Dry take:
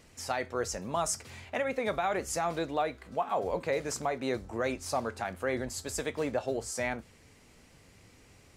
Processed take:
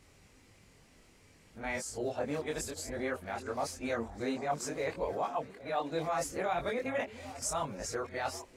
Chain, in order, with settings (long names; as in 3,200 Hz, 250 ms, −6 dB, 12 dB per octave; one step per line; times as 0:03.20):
played backwards from end to start
multi-voice chorus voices 4, 0.59 Hz, delay 23 ms, depth 3.9 ms
echo through a band-pass that steps 395 ms, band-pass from 290 Hz, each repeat 1.4 octaves, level −11 dB